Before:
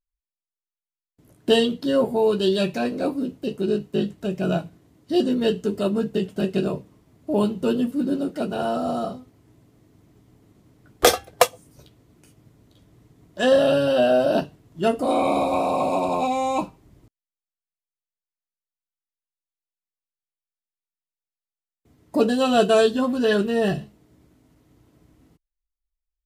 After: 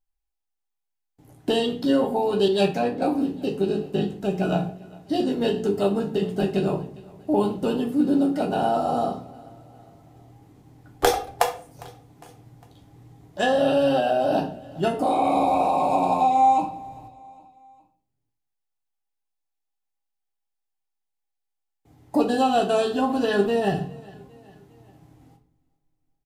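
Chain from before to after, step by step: bell 800 Hz +15 dB 0.2 oct; compressor 3:1, threshold -20 dBFS, peak gain reduction 10.5 dB; feedback echo 0.405 s, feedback 50%, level -22.5 dB; shoebox room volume 40 m³, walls mixed, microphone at 0.39 m; 2.48–3.02 three-band expander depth 100%

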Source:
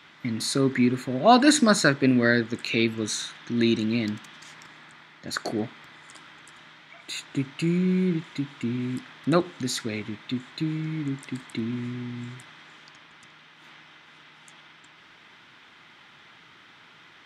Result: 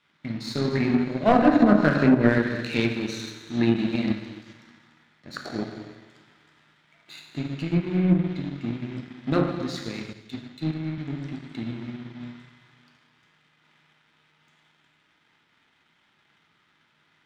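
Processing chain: one-sided fold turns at -11.5 dBFS; LPF 5900 Hz 24 dB/oct; low shelf 160 Hz +5.5 dB; notch 1100 Hz, Q 28; plate-style reverb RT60 1.8 s, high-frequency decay 0.95×, DRR -1 dB; treble ducked by the level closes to 330 Hz, closed at -6 dBFS; power-law curve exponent 1.4; 10.13–10.98 three-band expander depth 70%

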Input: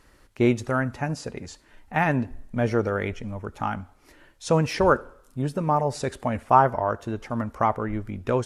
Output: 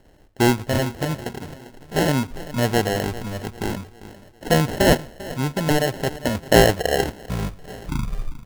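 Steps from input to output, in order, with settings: tape stop at the end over 2.15 s; feedback echo 0.397 s, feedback 48%, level -17 dB; sample-and-hold 37×; gain +3 dB

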